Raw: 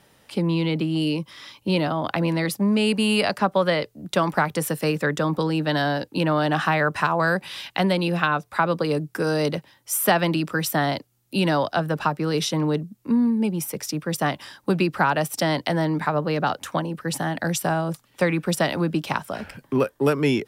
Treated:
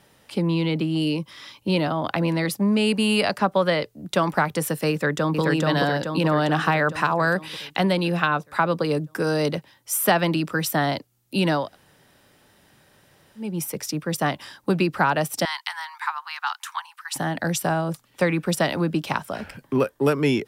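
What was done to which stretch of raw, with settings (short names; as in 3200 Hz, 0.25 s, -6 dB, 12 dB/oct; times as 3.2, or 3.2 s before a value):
4.91–5.41 echo throw 0.43 s, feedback 60%, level -1.5 dB
11.64–13.47 room tone, crossfade 0.24 s
15.45–17.16 steep high-pass 880 Hz 72 dB/oct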